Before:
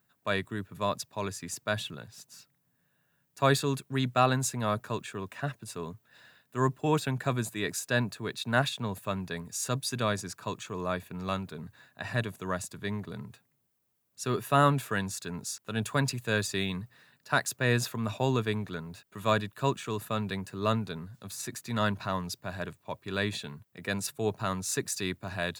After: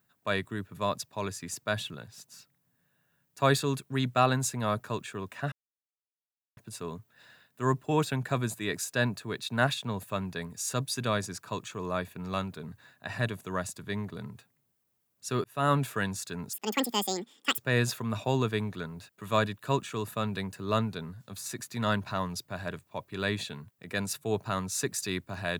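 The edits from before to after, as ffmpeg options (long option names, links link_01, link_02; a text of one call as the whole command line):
ffmpeg -i in.wav -filter_complex "[0:a]asplit=5[link_01][link_02][link_03][link_04][link_05];[link_01]atrim=end=5.52,asetpts=PTS-STARTPTS,afade=type=out:start_time=5.516:duration=0.004:curve=hsin,apad=pad_dur=1.05[link_06];[link_02]atrim=start=5.52:end=14.39,asetpts=PTS-STARTPTS,afade=type=in:duration=0.004:curve=hsin,afade=type=out:start_time=8.866:duration=0.004:curve=hsin[link_07];[link_03]atrim=start=14.39:end=15.484,asetpts=PTS-STARTPTS,afade=type=in:duration=0.34[link_08];[link_04]atrim=start=15.48:end=17.52,asetpts=PTS-STARTPTS,asetrate=85554,aresample=44100,atrim=end_sample=46373,asetpts=PTS-STARTPTS[link_09];[link_05]atrim=start=17.516[link_10];[link_06][link_07][link_08]concat=n=3:v=0:a=1[link_11];[link_11][link_09]acrossfade=duration=0.004:curve1=hsin:curve2=hsin[link_12];[link_12][link_10]acrossfade=duration=0.004:curve1=hsin:curve2=hsin" out.wav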